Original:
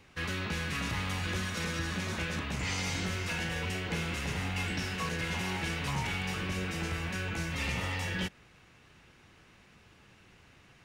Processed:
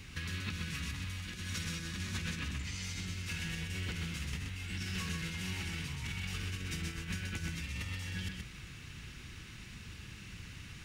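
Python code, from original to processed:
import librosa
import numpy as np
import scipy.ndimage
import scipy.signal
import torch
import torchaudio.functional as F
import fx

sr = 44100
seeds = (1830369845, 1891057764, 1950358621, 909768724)

y = fx.tone_stack(x, sr, knobs='6-0-2')
y = fx.over_compress(y, sr, threshold_db=-58.0, ratio=-1.0)
y = y + 10.0 ** (-4.5 / 20.0) * np.pad(y, (int(127 * sr / 1000.0), 0))[:len(y)]
y = F.gain(torch.from_numpy(y), 18.0).numpy()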